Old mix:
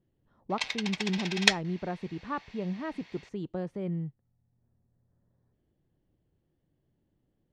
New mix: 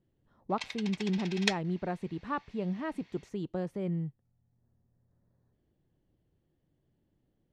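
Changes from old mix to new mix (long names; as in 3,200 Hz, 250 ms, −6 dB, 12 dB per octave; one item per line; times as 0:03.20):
speech: remove high-frequency loss of the air 53 metres
background −8.0 dB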